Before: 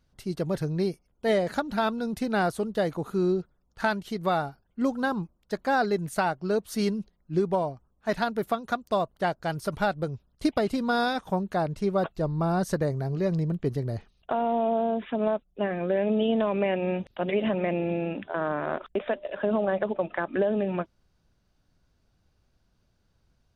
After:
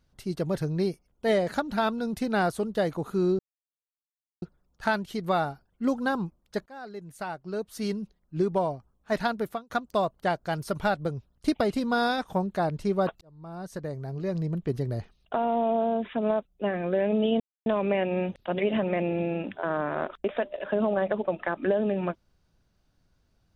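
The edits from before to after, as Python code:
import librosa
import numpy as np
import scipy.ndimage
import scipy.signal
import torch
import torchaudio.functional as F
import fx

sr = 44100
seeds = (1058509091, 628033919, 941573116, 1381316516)

y = fx.edit(x, sr, fx.insert_silence(at_s=3.39, length_s=1.03),
    fx.fade_in_from(start_s=5.63, length_s=1.97, floor_db=-24.0),
    fx.fade_out_span(start_s=8.23, length_s=0.44, curve='qsin'),
    fx.fade_in_span(start_s=12.18, length_s=1.66),
    fx.insert_silence(at_s=16.37, length_s=0.26), tone=tone)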